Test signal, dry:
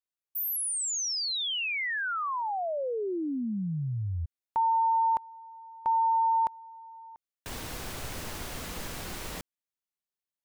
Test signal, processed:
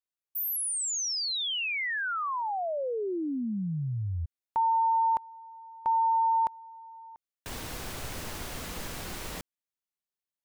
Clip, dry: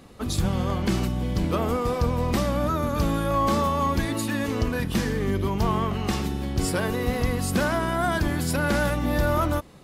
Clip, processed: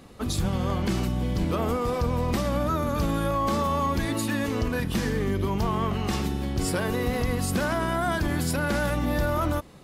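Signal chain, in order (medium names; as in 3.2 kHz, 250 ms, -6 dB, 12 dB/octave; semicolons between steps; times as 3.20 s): peak limiter -16.5 dBFS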